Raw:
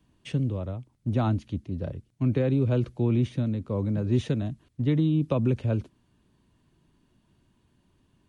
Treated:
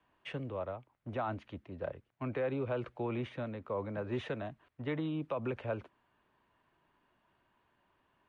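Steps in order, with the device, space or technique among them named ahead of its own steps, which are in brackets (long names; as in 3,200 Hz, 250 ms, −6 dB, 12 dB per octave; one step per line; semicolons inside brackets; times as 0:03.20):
DJ mixer with the lows and highs turned down (three-way crossover with the lows and the highs turned down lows −21 dB, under 540 Hz, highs −24 dB, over 2,500 Hz; brickwall limiter −30.5 dBFS, peak gain reduction 9 dB)
level +4.5 dB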